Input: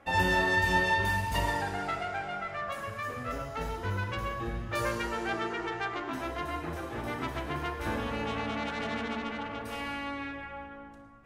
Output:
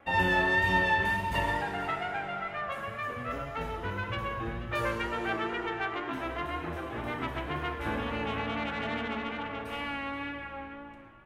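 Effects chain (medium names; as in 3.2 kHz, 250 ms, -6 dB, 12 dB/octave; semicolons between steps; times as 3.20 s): resonant high shelf 3.9 kHz -6.5 dB, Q 1.5; hum notches 50/100 Hz; on a send: delay 484 ms -15.5 dB; on the sum: wow and flutter 27 cents; frequency-shifting echo 383 ms, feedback 49%, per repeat +33 Hz, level -21 dB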